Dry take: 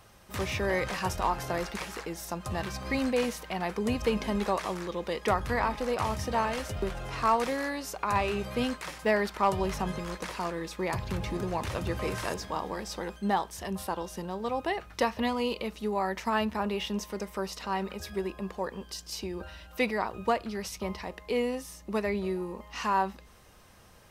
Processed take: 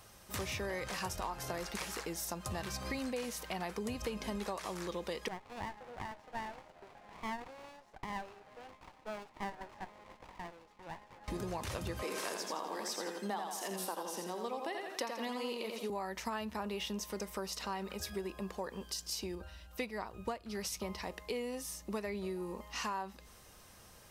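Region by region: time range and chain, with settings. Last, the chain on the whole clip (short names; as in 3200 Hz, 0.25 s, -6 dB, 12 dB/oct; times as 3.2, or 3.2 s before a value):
5.28–11.28 ladder band-pass 980 Hz, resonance 50% + running maximum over 17 samples
12.02–15.9 HPF 230 Hz 24 dB/oct + warbling echo 84 ms, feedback 43%, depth 61 cents, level -5 dB
19.35–20.5 low shelf 110 Hz +9 dB + upward expander, over -36 dBFS
whole clip: tone controls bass -1 dB, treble +6 dB; compressor, threshold -33 dBFS; gain -2.5 dB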